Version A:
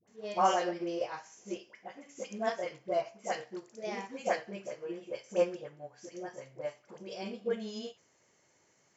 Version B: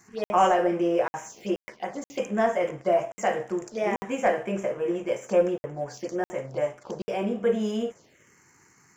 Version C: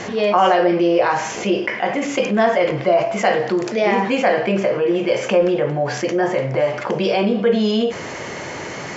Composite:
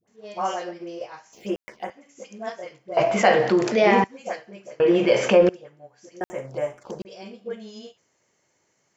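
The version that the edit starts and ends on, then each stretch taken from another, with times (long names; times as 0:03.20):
A
0:01.33–0:01.90: punch in from B
0:02.97–0:04.04: punch in from C
0:04.80–0:05.49: punch in from C
0:06.21–0:07.05: punch in from B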